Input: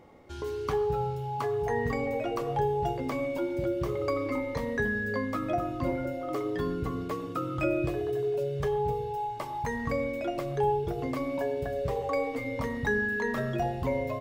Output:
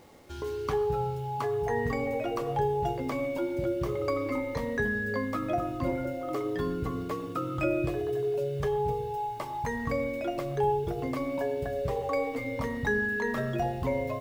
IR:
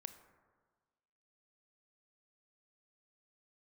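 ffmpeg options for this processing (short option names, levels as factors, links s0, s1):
-af "acrusher=bits=9:mix=0:aa=0.000001"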